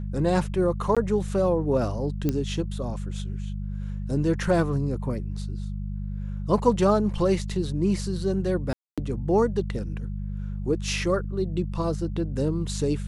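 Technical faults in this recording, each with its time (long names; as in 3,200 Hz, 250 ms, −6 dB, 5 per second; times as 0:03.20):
mains hum 50 Hz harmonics 4 −31 dBFS
0:00.95–0:00.97: drop-out 16 ms
0:02.29: click −12 dBFS
0:08.73–0:08.98: drop-out 246 ms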